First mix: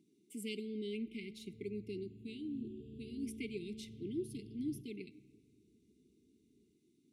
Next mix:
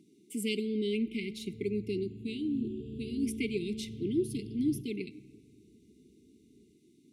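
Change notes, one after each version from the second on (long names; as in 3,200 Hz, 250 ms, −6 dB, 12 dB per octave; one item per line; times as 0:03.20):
speech +9.5 dB
background +9.5 dB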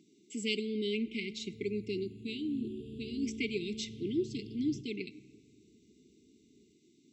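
speech: add linear-phase brick-wall low-pass 8,000 Hz
master: add spectral tilt +1.5 dB per octave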